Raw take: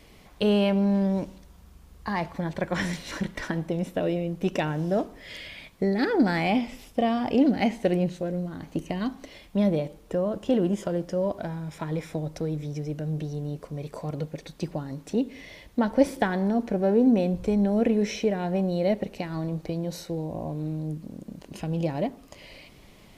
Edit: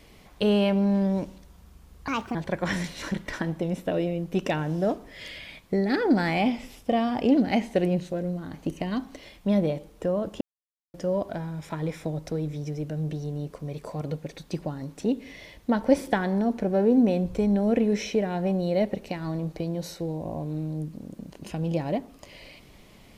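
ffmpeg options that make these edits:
-filter_complex "[0:a]asplit=5[s0][s1][s2][s3][s4];[s0]atrim=end=2.084[s5];[s1]atrim=start=2.08:end=2.44,asetpts=PTS-STARTPTS,asetrate=59094,aresample=44100[s6];[s2]atrim=start=2.436:end=10.5,asetpts=PTS-STARTPTS,afade=t=out:st=8.06:d=0.004:c=hsin[s7];[s3]atrim=start=10.5:end=11.03,asetpts=PTS-STARTPTS,volume=0[s8];[s4]atrim=start=11.03,asetpts=PTS-STARTPTS,afade=t=in:d=0.004:c=hsin[s9];[s5][s6]acrossfade=d=0.004:c1=hsin:c2=hsin[s10];[s7][s8][s9]concat=n=3:v=0:a=1[s11];[s10][s11]acrossfade=d=0.004:c1=hsin:c2=hsin"

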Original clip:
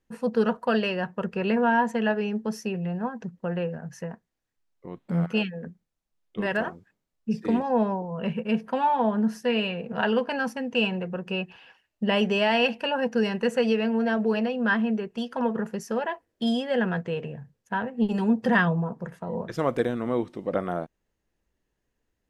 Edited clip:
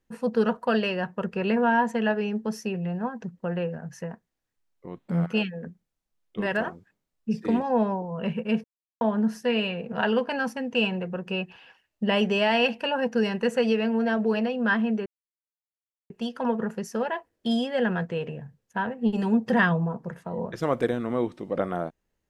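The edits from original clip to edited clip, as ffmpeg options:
-filter_complex "[0:a]asplit=4[s0][s1][s2][s3];[s0]atrim=end=8.64,asetpts=PTS-STARTPTS,afade=t=out:st=8.636:d=0.004:c=hsin[s4];[s1]atrim=start=8.64:end=9.01,asetpts=PTS-STARTPTS,volume=0[s5];[s2]atrim=start=9.01:end=15.06,asetpts=PTS-STARTPTS,afade=t=in:d=0.004:c=hsin,afade=t=out:st=6.046:d=0.004:c=hsin,apad=pad_dur=1.04[s6];[s3]atrim=start=15.06,asetpts=PTS-STARTPTS,afade=t=in:d=0.004:c=hsin[s7];[s4][s5][s6][s7]concat=n=4:v=0:a=1"

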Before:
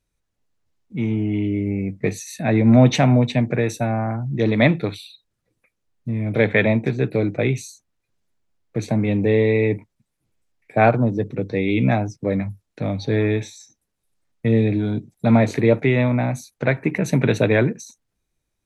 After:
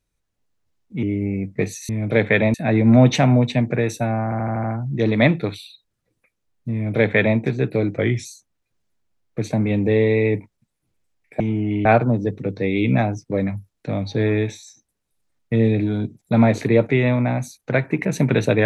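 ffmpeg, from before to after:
-filter_complex "[0:a]asplit=13[s0][s1][s2][s3][s4][s5][s6][s7][s8][s9][s10][s11][s12];[s0]atrim=end=1.032[s13];[s1]atrim=start=1.478:end=2.342[s14];[s2]atrim=start=6.128:end=6.782[s15];[s3]atrim=start=2.338:end=4.122[s16];[s4]atrim=start=4.038:end=4.122[s17];[s5]atrim=start=4.038:end=4.122[s18];[s6]atrim=start=4.038:end=4.122[s19];[s7]atrim=start=4.038:end=4.122[s20];[s8]atrim=start=4.038:end=7.384[s21];[s9]atrim=start=7.38:end=7.63,asetpts=PTS-STARTPTS,asetrate=40572,aresample=44100[s22];[s10]atrim=start=7.626:end=10.782[s23];[s11]atrim=start=1.028:end=1.482[s24];[s12]atrim=start=10.778[s25];[s13][s14]acrossfade=d=0.004:c1=hsin:c2=hsin[s26];[s26][s15]acrossfade=d=0.004:c1=hsin:c2=hsin[s27];[s27][s16]acrossfade=d=0.004:c1=hsin:c2=hsin[s28];[s28][s17]acrossfade=d=0.004:c1=hsin:c2=hsin[s29];[s29][s18]acrossfade=d=0.004:c1=hsin:c2=hsin[s30];[s30][s19]acrossfade=d=0.004:c1=hsin:c2=hsin[s31];[s31][s20]acrossfade=d=0.004:c1=hsin:c2=hsin[s32];[s32][s21]acrossfade=d=0.004:c1=hsin:c2=hsin[s33];[s33][s22]acrossfade=d=0.004:c1=hsin:c2=hsin[s34];[s34][s23]acrossfade=d=0.004:c1=hsin:c2=hsin[s35];[s35][s24]acrossfade=d=0.004:c1=hsin:c2=hsin[s36];[s36][s25]acrossfade=d=0.004:c1=hsin:c2=hsin"

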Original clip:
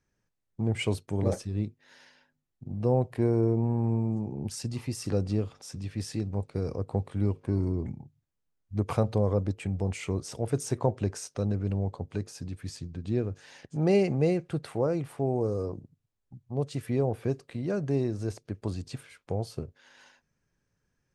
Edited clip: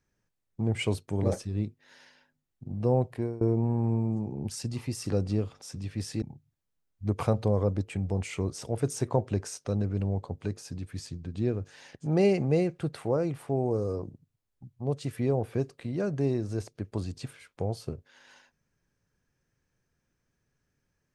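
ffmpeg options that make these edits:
-filter_complex "[0:a]asplit=3[s0][s1][s2];[s0]atrim=end=3.41,asetpts=PTS-STARTPTS,afade=t=out:st=3.06:d=0.35:silence=0.0707946[s3];[s1]atrim=start=3.41:end=6.222,asetpts=PTS-STARTPTS,afade=t=in:d=0.004:c=hsin:silence=0.0707946[s4];[s2]atrim=start=7.918[s5];[s3][s4]concat=n=2:v=0:a=1[s6];[s6][s5]acrossfade=d=0.004:c1=hsin:c2=hsin"

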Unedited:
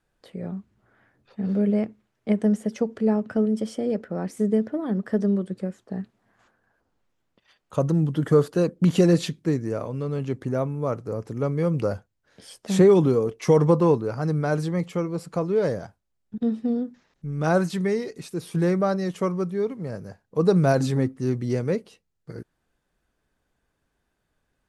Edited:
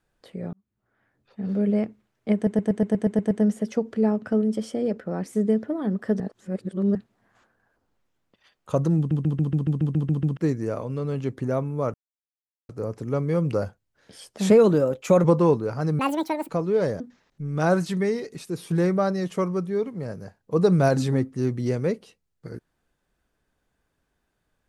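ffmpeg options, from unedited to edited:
-filter_complex "[0:a]asplit=28[s0][s1][s2][s3][s4][s5][s6][s7][s8][s9][s10][s11][s12][s13][s14][s15][s16][s17][s18][s19][s20][s21][s22][s23][s24][s25][s26][s27];[s0]atrim=end=0.53,asetpts=PTS-STARTPTS,afade=t=out:st=0.526:d=0.004:c=hsin[s28];[s1]atrim=start=0.53:end=2.472,asetpts=PTS-STARTPTS,afade=t=in:d=1.24[s29];[s2]atrim=start=2.348:end=2.472[s30];[s3]atrim=start=2.348:end=2.472[s31];[s4]atrim=start=2.348:end=2.472[s32];[s5]atrim=start=2.348:end=2.472[s33];[s6]atrim=start=2.348:end=2.472[s34];[s7]atrim=start=2.348:end=2.472[s35];[s8]atrim=start=2.348:end=2.472[s36];[s9]atrim=start=2.348:end=5.242[s37];[s10]atrim=start=5.238:end=5.992,asetpts=PTS-STARTPTS,areverse[s38];[s11]atrim=start=5.988:end=8.152[s39];[s12]atrim=start=8.008:end=8.152[s40];[s13]atrim=start=8.008:end=8.152[s41];[s14]atrim=start=8.008:end=8.152[s42];[s15]atrim=start=8.008:end=8.152[s43];[s16]atrim=start=8.008:end=8.152[s44];[s17]atrim=start=8.008:end=8.152[s45];[s18]atrim=start=8.008:end=8.152[s46];[s19]atrim=start=8.008:end=8.152[s47];[s20]atrim=start=8.008:end=8.152[s48];[s21]atrim=start=9.408:end=10.98,asetpts=PTS-STARTPTS,afade=t=out:st=1.568:d=0.004:c=hsin,apad=pad_dur=0.75[s49];[s22]atrim=start=10.98:end=12.794,asetpts=PTS-STARTPTS,afade=t=in:d=0.004:c=hsin[s50];[s23]atrim=start=12.79:end=13.65,asetpts=PTS-STARTPTS,asetrate=51156,aresample=44100[s51];[s24]atrim=start=13.646:end=14.404[s52];[s25]atrim=start=14.4:end=15.31,asetpts=PTS-STARTPTS,asetrate=80262,aresample=44100[s53];[s26]atrim=start=15.306:end=15.822[s54];[s27]atrim=start=16.838[s55];[s28][s29]concat=n=2:v=0:a=1[s56];[s56][s30]acrossfade=d=0.004:c1=hsin:c2=hsin[s57];[s57][s31]acrossfade=d=0.004:c1=hsin:c2=hsin[s58];[s58][s32]acrossfade=d=0.004:c1=hsin:c2=hsin[s59];[s59][s33]acrossfade=d=0.004:c1=hsin:c2=hsin[s60];[s60][s34]acrossfade=d=0.004:c1=hsin:c2=hsin[s61];[s61][s35]acrossfade=d=0.004:c1=hsin:c2=hsin[s62];[s62][s36]acrossfade=d=0.004:c1=hsin:c2=hsin[s63];[s63][s37]acrossfade=d=0.004:c1=hsin:c2=hsin[s64];[s64][s38]acrossfade=d=0.004:c1=hsin:c2=hsin[s65];[s65][s39]acrossfade=d=0.004:c1=hsin:c2=hsin[s66];[s66][s40]acrossfade=d=0.004:c1=hsin:c2=hsin[s67];[s67][s41]acrossfade=d=0.004:c1=hsin:c2=hsin[s68];[s68][s42]acrossfade=d=0.004:c1=hsin:c2=hsin[s69];[s69][s43]acrossfade=d=0.004:c1=hsin:c2=hsin[s70];[s70][s44]acrossfade=d=0.004:c1=hsin:c2=hsin[s71];[s71][s45]acrossfade=d=0.004:c1=hsin:c2=hsin[s72];[s72][s46]acrossfade=d=0.004:c1=hsin:c2=hsin[s73];[s73][s47]acrossfade=d=0.004:c1=hsin:c2=hsin[s74];[s74][s48]acrossfade=d=0.004:c1=hsin:c2=hsin[s75];[s49][s50]concat=n=2:v=0:a=1[s76];[s75][s76]acrossfade=d=0.004:c1=hsin:c2=hsin[s77];[s77][s51]acrossfade=d=0.004:c1=hsin:c2=hsin[s78];[s78][s52]acrossfade=d=0.004:c1=hsin:c2=hsin[s79];[s79][s53]acrossfade=d=0.004:c1=hsin:c2=hsin[s80];[s80][s54]acrossfade=d=0.004:c1=hsin:c2=hsin[s81];[s81][s55]acrossfade=d=0.004:c1=hsin:c2=hsin"

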